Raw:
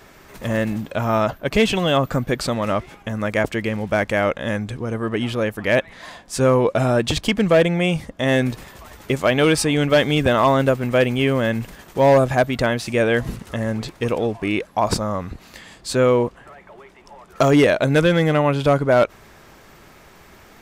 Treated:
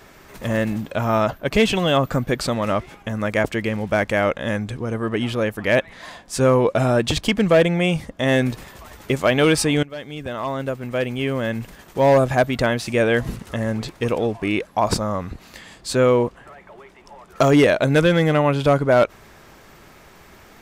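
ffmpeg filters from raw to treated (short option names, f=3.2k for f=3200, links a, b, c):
-filter_complex "[0:a]asplit=2[a][b];[a]atrim=end=9.83,asetpts=PTS-STARTPTS,afade=t=out:st=9.826:d=0.004:c=hsin:silence=0.0841395[c];[b]atrim=start=9.83,asetpts=PTS-STARTPTS,afade=t=in:d=2.6:silence=0.0841395[d];[c][d]concat=n=2:v=0:a=1"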